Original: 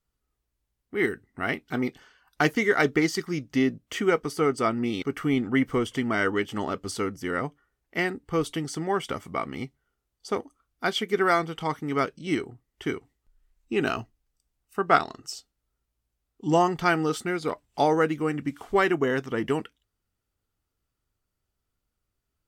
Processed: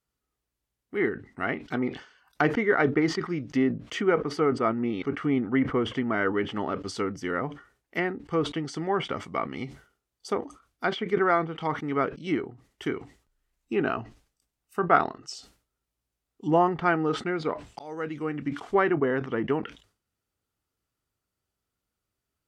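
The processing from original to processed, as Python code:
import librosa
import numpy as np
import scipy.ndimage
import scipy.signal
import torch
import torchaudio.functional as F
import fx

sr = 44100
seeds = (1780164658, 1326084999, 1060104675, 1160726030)

y = fx.edit(x, sr, fx.fade_in_span(start_s=17.79, length_s=0.72), tone=tone)
y = fx.env_lowpass_down(y, sr, base_hz=1800.0, full_db=-23.5)
y = fx.highpass(y, sr, hz=110.0, slope=6)
y = fx.sustainer(y, sr, db_per_s=140.0)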